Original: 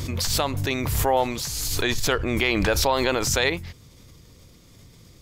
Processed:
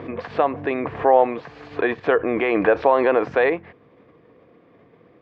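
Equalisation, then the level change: cabinet simulation 300–2600 Hz, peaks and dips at 300 Hz +3 dB, 470 Hz +8 dB, 710 Hz +9 dB, 1.1 kHz +8 dB, 1.7 kHz +8 dB, 2.5 kHz +3 dB; tilt shelf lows +6 dB, about 650 Hz; 0.0 dB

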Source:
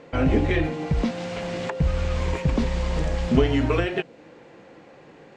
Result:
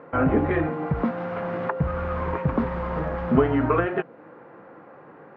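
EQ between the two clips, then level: high-pass 95 Hz 12 dB/octave; resonant low-pass 1.3 kHz, resonance Q 2.5; 0.0 dB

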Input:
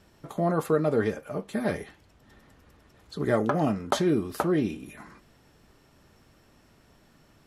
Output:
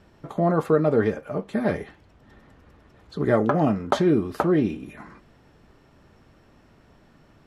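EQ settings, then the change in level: low-pass 2.3 kHz 6 dB/octave; +4.5 dB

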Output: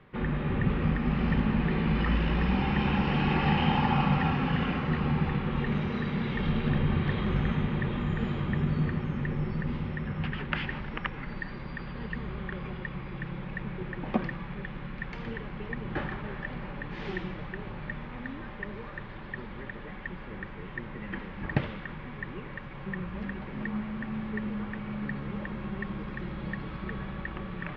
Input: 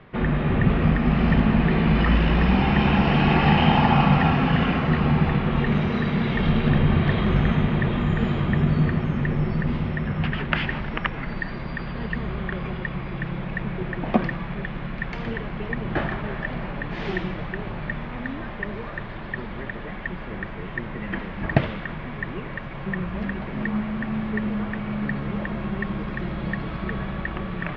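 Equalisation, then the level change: Butterworth band-stop 670 Hz, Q 7.3; -7.5 dB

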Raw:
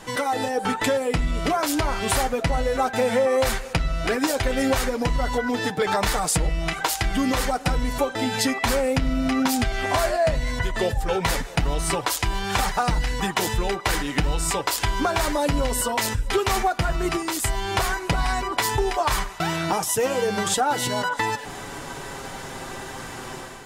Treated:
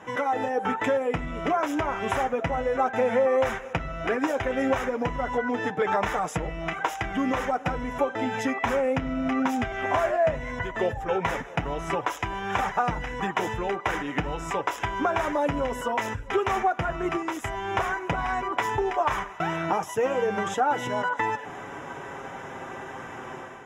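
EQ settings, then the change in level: boxcar filter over 10 samples; high-pass 62 Hz; bass shelf 240 Hz -7.5 dB; 0.0 dB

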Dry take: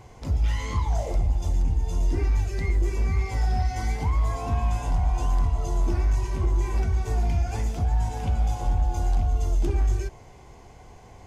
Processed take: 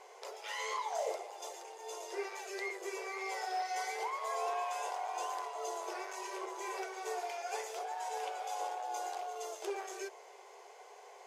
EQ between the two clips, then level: brick-wall FIR high-pass 370 Hz; -2.0 dB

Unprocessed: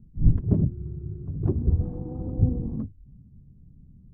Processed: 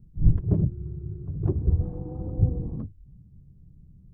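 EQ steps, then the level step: peaking EQ 240 Hz -14 dB 0.21 oct; 0.0 dB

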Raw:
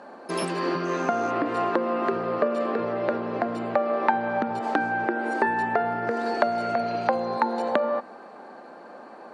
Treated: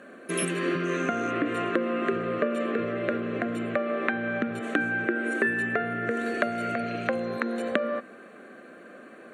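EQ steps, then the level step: treble shelf 3.7 kHz +9 dB; static phaser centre 2.1 kHz, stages 4; +2.0 dB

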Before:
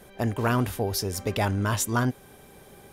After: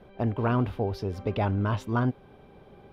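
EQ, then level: distance through air 360 m; peaking EQ 1.8 kHz -7 dB 0.46 oct; 0.0 dB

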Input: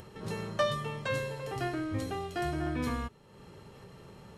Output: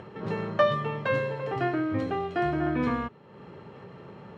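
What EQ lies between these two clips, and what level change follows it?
high-pass 130 Hz 12 dB/octave; low-pass 2.3 kHz 12 dB/octave; +7.0 dB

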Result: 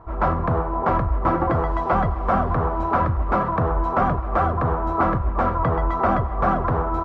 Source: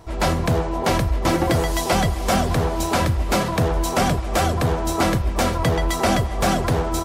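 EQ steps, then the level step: resonant low-pass 1.2 kHz, resonance Q 3.5; bass shelf 63 Hz +6 dB; -4.0 dB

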